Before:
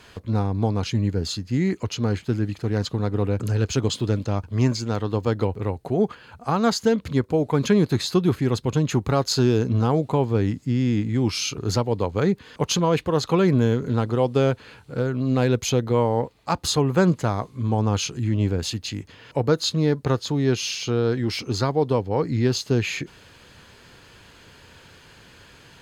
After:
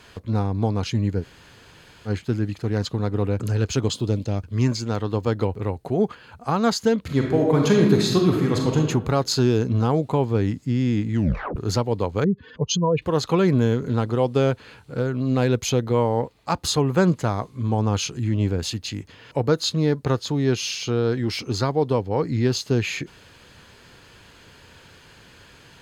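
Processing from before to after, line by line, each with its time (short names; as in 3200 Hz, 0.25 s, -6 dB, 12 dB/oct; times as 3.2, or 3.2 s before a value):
1.22–2.08 room tone, crossfade 0.06 s
3.92–4.67 bell 2200 Hz -> 620 Hz -10.5 dB
7.02–8.77 reverb throw, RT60 1.1 s, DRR 0 dB
11.13 tape stop 0.43 s
12.24–13.02 spectral contrast raised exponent 2.1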